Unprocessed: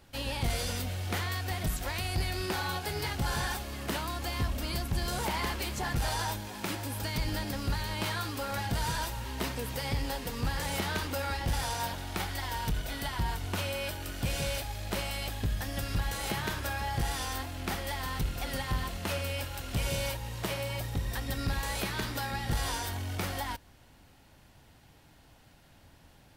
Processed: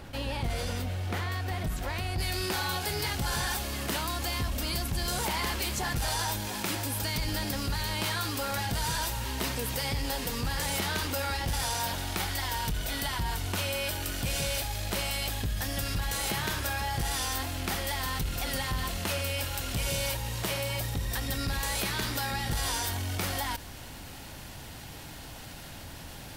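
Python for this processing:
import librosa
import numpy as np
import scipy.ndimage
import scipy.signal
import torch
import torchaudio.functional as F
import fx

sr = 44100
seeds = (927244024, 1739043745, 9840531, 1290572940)

y = fx.high_shelf(x, sr, hz=3100.0, db=fx.steps((0.0, -7.5), (2.18, 6.0)))
y = fx.env_flatten(y, sr, amount_pct=50)
y = F.gain(torch.from_numpy(y), -2.0).numpy()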